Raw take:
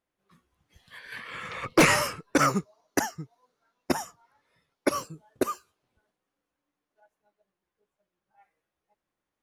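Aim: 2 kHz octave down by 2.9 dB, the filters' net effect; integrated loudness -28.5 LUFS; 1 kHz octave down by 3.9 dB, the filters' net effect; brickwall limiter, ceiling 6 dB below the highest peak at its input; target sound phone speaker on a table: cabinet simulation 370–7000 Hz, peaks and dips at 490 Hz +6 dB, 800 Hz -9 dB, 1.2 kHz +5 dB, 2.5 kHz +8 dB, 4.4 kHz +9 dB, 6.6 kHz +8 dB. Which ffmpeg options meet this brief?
-af "equalizer=f=1000:t=o:g=-5,equalizer=f=2000:t=o:g=-7.5,alimiter=limit=0.158:level=0:latency=1,highpass=f=370:w=0.5412,highpass=f=370:w=1.3066,equalizer=f=490:t=q:w=4:g=6,equalizer=f=800:t=q:w=4:g=-9,equalizer=f=1200:t=q:w=4:g=5,equalizer=f=2500:t=q:w=4:g=8,equalizer=f=4400:t=q:w=4:g=9,equalizer=f=6600:t=q:w=4:g=8,lowpass=f=7000:w=0.5412,lowpass=f=7000:w=1.3066,volume=1.26"

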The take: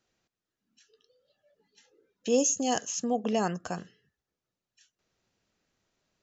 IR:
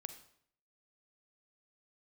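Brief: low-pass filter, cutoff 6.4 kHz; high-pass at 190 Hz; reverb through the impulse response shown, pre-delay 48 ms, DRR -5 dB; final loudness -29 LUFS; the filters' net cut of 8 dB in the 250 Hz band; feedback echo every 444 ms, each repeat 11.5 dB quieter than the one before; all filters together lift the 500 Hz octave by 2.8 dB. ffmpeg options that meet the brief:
-filter_complex "[0:a]highpass=190,lowpass=6400,equalizer=f=250:t=o:g=-8.5,equalizer=f=500:t=o:g=5,aecho=1:1:444|888|1332:0.266|0.0718|0.0194,asplit=2[s0][s1];[1:a]atrim=start_sample=2205,adelay=48[s2];[s1][s2]afir=irnorm=-1:irlink=0,volume=2.66[s3];[s0][s3]amix=inputs=2:normalize=0,volume=0.501"

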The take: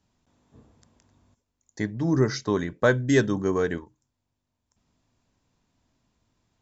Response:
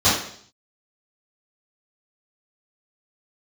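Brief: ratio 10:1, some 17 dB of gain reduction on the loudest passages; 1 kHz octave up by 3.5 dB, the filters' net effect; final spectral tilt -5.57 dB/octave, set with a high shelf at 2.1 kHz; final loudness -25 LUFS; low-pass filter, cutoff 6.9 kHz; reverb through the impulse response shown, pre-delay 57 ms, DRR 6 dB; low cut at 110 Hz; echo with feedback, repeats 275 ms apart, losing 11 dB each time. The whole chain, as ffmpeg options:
-filter_complex "[0:a]highpass=110,lowpass=6900,equalizer=f=1000:t=o:g=3.5,highshelf=f=2100:g=3,acompressor=threshold=0.0282:ratio=10,aecho=1:1:275|550|825:0.282|0.0789|0.0221,asplit=2[s0][s1];[1:a]atrim=start_sample=2205,adelay=57[s2];[s1][s2]afir=irnorm=-1:irlink=0,volume=0.0473[s3];[s0][s3]amix=inputs=2:normalize=0,volume=3.16"

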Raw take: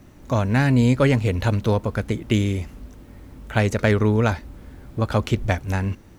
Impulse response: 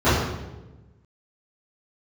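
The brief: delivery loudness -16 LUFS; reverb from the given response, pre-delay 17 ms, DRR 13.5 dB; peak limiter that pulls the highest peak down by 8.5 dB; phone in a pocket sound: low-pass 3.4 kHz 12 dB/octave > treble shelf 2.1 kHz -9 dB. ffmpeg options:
-filter_complex "[0:a]alimiter=limit=0.224:level=0:latency=1,asplit=2[s0][s1];[1:a]atrim=start_sample=2205,adelay=17[s2];[s1][s2]afir=irnorm=-1:irlink=0,volume=0.015[s3];[s0][s3]amix=inputs=2:normalize=0,lowpass=3400,highshelf=f=2100:g=-9,volume=2.11"

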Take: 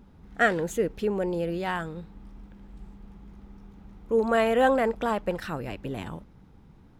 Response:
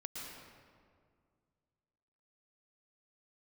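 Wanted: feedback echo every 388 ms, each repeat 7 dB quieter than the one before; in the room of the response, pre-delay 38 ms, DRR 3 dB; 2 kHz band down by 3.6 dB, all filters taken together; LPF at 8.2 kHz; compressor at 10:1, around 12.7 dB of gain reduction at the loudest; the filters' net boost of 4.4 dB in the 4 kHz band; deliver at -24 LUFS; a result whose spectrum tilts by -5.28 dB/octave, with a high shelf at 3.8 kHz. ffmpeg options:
-filter_complex "[0:a]lowpass=8200,equalizer=f=2000:t=o:g=-7,highshelf=f=3800:g=6.5,equalizer=f=4000:t=o:g=6,acompressor=threshold=0.0282:ratio=10,aecho=1:1:388|776|1164|1552|1940:0.447|0.201|0.0905|0.0407|0.0183,asplit=2[s0][s1];[1:a]atrim=start_sample=2205,adelay=38[s2];[s1][s2]afir=irnorm=-1:irlink=0,volume=0.794[s3];[s0][s3]amix=inputs=2:normalize=0,volume=3.35"

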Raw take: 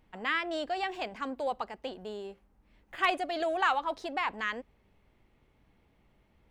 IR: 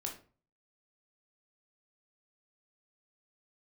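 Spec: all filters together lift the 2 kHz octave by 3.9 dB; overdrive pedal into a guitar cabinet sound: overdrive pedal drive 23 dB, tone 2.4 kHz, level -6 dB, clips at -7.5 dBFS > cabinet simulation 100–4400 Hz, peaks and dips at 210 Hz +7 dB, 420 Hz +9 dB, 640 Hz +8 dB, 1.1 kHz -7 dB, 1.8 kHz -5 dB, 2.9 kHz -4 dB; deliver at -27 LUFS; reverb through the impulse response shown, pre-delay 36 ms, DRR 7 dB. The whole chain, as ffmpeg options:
-filter_complex "[0:a]equalizer=f=2000:t=o:g=9,asplit=2[s0][s1];[1:a]atrim=start_sample=2205,adelay=36[s2];[s1][s2]afir=irnorm=-1:irlink=0,volume=0.473[s3];[s0][s3]amix=inputs=2:normalize=0,asplit=2[s4][s5];[s5]highpass=f=720:p=1,volume=14.1,asoftclip=type=tanh:threshold=0.422[s6];[s4][s6]amix=inputs=2:normalize=0,lowpass=f=2400:p=1,volume=0.501,highpass=100,equalizer=f=210:t=q:w=4:g=7,equalizer=f=420:t=q:w=4:g=9,equalizer=f=640:t=q:w=4:g=8,equalizer=f=1100:t=q:w=4:g=-7,equalizer=f=1800:t=q:w=4:g=-5,equalizer=f=2900:t=q:w=4:g=-4,lowpass=f=4400:w=0.5412,lowpass=f=4400:w=1.3066,volume=0.355"

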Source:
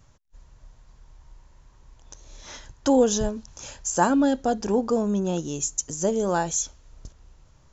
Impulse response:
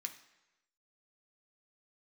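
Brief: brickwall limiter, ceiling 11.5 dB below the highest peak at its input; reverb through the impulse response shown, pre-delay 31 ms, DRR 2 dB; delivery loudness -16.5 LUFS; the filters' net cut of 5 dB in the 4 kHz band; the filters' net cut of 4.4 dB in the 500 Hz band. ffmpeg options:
-filter_complex "[0:a]equalizer=f=500:t=o:g=-5,equalizer=f=4000:t=o:g=-7,alimiter=limit=0.0794:level=0:latency=1,asplit=2[s0][s1];[1:a]atrim=start_sample=2205,adelay=31[s2];[s1][s2]afir=irnorm=-1:irlink=0,volume=1.06[s3];[s0][s3]amix=inputs=2:normalize=0,volume=4.73"

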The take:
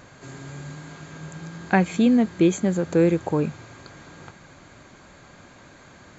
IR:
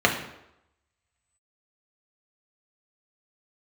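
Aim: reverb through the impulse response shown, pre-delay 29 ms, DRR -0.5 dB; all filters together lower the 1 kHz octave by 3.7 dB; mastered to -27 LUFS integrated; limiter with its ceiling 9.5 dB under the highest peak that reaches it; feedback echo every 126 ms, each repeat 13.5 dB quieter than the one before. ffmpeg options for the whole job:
-filter_complex "[0:a]equalizer=f=1000:t=o:g=-5.5,alimiter=limit=0.141:level=0:latency=1,aecho=1:1:126|252:0.211|0.0444,asplit=2[s0][s1];[1:a]atrim=start_sample=2205,adelay=29[s2];[s1][s2]afir=irnorm=-1:irlink=0,volume=0.126[s3];[s0][s3]amix=inputs=2:normalize=0,volume=0.75"

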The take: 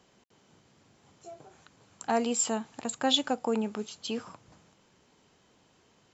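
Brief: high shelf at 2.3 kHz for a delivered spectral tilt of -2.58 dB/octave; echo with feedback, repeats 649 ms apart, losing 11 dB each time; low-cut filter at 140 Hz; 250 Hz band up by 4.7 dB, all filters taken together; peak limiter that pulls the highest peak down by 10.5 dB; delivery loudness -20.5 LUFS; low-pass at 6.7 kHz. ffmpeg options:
-af "highpass=140,lowpass=6700,equalizer=f=250:t=o:g=5.5,highshelf=f=2300:g=8,alimiter=limit=0.15:level=0:latency=1,aecho=1:1:649|1298|1947:0.282|0.0789|0.0221,volume=2.66"

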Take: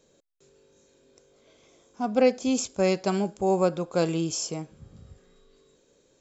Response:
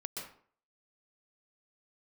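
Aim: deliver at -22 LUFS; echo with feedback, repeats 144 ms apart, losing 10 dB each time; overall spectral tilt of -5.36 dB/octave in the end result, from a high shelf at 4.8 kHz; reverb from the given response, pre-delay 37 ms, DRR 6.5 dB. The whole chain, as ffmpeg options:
-filter_complex "[0:a]highshelf=f=4800:g=-9,aecho=1:1:144|288|432|576:0.316|0.101|0.0324|0.0104,asplit=2[s0][s1];[1:a]atrim=start_sample=2205,adelay=37[s2];[s1][s2]afir=irnorm=-1:irlink=0,volume=0.473[s3];[s0][s3]amix=inputs=2:normalize=0,volume=1.33"

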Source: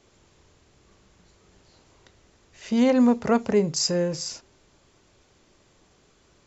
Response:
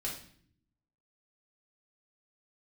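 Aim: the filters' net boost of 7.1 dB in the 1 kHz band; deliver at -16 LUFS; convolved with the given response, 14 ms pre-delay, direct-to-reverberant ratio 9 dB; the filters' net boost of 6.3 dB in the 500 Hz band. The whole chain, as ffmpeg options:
-filter_complex "[0:a]equalizer=f=500:t=o:g=5.5,equalizer=f=1000:t=o:g=7.5,asplit=2[s0][s1];[1:a]atrim=start_sample=2205,adelay=14[s2];[s1][s2]afir=irnorm=-1:irlink=0,volume=0.299[s3];[s0][s3]amix=inputs=2:normalize=0,volume=1.41"

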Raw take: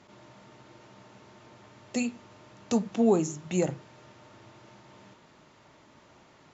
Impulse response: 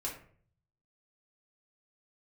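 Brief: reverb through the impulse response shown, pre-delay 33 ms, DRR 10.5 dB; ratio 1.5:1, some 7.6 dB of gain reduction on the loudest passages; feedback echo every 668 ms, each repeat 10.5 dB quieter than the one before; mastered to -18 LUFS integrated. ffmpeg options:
-filter_complex "[0:a]acompressor=threshold=0.01:ratio=1.5,aecho=1:1:668|1336|2004:0.299|0.0896|0.0269,asplit=2[s0][s1];[1:a]atrim=start_sample=2205,adelay=33[s2];[s1][s2]afir=irnorm=-1:irlink=0,volume=0.251[s3];[s0][s3]amix=inputs=2:normalize=0,volume=7.94"

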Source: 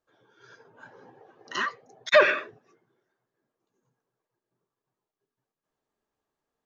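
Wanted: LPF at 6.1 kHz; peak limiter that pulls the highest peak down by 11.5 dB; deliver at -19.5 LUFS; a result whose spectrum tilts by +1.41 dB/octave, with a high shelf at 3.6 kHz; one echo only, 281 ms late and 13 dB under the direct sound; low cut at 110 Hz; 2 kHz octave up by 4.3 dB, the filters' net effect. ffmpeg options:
-af "highpass=110,lowpass=6100,equalizer=f=2000:t=o:g=7.5,highshelf=f=3600:g=-8.5,alimiter=limit=0.168:level=0:latency=1,aecho=1:1:281:0.224,volume=2.66"

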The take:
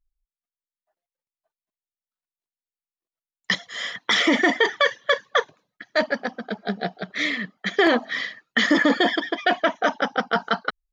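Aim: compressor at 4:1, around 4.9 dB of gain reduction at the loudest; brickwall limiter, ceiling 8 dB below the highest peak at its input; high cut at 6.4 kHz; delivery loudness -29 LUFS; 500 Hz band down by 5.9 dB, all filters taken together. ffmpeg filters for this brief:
-af "lowpass=6400,equalizer=f=500:t=o:g=-8,acompressor=threshold=0.0794:ratio=4,volume=1.12,alimiter=limit=0.141:level=0:latency=1"

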